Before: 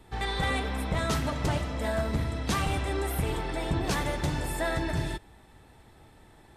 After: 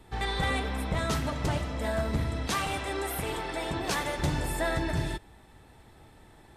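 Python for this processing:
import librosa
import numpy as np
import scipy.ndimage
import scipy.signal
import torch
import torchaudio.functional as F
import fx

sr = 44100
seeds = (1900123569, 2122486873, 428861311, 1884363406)

y = fx.low_shelf(x, sr, hz=240.0, db=-11.5, at=(2.47, 4.19))
y = fx.rider(y, sr, range_db=10, speed_s=2.0)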